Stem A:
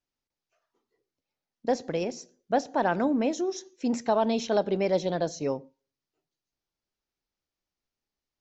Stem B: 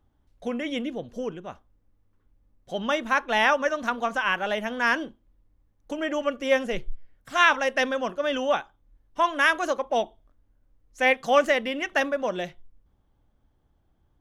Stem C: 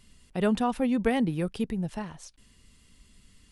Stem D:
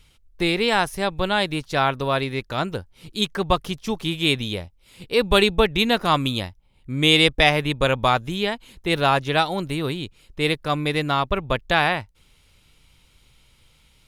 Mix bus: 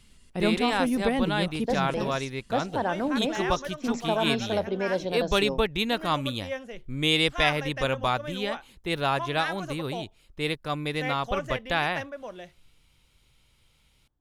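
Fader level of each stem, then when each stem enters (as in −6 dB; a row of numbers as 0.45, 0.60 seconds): −2.5, −12.0, −0.5, −7.0 decibels; 0.00, 0.00, 0.00, 0.00 seconds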